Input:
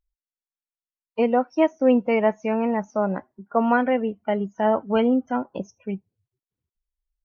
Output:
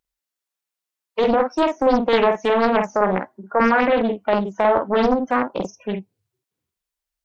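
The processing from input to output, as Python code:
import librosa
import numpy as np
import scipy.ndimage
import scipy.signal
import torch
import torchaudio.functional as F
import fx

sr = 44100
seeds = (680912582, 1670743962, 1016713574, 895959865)

p1 = fx.highpass(x, sr, hz=340.0, slope=6)
p2 = fx.over_compress(p1, sr, threshold_db=-25.0, ratio=-1.0)
p3 = p1 + (p2 * 10.0 ** (1.0 / 20.0))
p4 = fx.doubler(p3, sr, ms=48.0, db=-4.5)
y = fx.doppler_dist(p4, sr, depth_ms=0.7)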